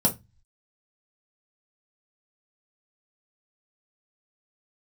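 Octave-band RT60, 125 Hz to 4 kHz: 0.60 s, 0.30 s, 0.20 s, 0.20 s, 0.20 s, 0.20 s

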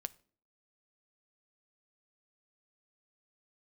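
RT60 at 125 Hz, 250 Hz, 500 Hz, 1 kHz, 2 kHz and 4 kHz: 0.55 s, 0.60 s, 0.55 s, 0.45 s, 0.35 s, 0.35 s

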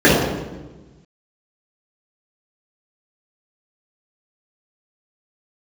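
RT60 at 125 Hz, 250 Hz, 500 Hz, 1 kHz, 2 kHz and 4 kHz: 1.7 s, 1.5 s, 1.3 s, 1.1 s, 0.95 s, 0.85 s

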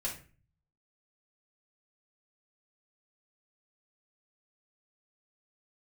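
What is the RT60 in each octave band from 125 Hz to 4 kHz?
0.85 s, 0.55 s, 0.40 s, 0.35 s, 0.40 s, 0.30 s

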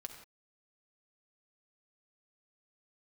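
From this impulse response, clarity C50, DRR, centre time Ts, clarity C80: 6.5 dB, 3.5 dB, 22 ms, 8.0 dB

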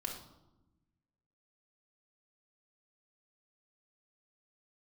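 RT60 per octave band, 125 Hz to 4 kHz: 1.7 s, 1.6 s, 1.0 s, 0.90 s, 0.60 s, 0.60 s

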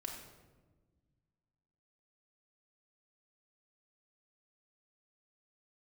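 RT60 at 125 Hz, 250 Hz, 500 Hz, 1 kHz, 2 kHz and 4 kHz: 2.4 s, 2.2 s, 1.5 s, 1.1 s, 0.90 s, 0.75 s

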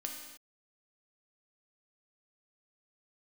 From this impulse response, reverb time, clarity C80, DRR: no single decay rate, 5.5 dB, 0.5 dB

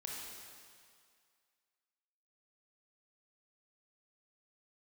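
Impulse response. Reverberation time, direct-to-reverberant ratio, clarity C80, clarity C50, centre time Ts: 2.1 s, -3.0 dB, 1.0 dB, -1.0 dB, 117 ms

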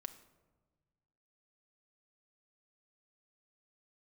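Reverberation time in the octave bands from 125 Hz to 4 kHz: 2.2 s, 1.7 s, 1.4 s, 1.2 s, 0.85 s, 0.60 s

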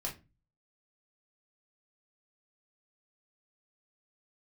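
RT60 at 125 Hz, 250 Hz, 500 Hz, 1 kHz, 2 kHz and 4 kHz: 0.60 s, 0.45 s, 0.30 s, 0.25 s, 0.25 s, 0.20 s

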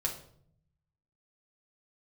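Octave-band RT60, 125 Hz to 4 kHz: 1.3 s, 1.1 s, 0.70 s, 0.55 s, 0.45 s, 0.45 s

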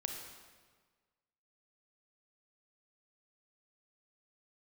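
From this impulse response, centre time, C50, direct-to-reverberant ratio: 49 ms, 4.0 dB, 2.5 dB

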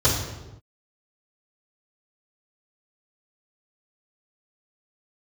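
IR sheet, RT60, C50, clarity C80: no single decay rate, 3.5 dB, 6.0 dB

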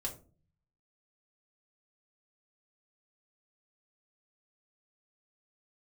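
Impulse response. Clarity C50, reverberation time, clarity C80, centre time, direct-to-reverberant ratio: 11.0 dB, 0.40 s, 16.5 dB, 13 ms, -2.0 dB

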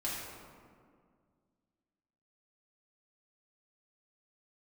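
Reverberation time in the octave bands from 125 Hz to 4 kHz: 2.5 s, 2.6 s, 2.1 s, 1.9 s, 1.5 s, 1.0 s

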